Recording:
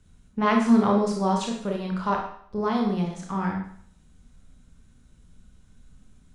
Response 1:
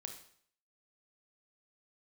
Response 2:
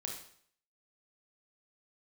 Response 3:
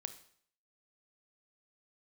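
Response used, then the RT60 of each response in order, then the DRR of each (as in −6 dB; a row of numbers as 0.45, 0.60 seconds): 2; 0.60, 0.60, 0.60 seconds; 4.5, 0.5, 10.0 decibels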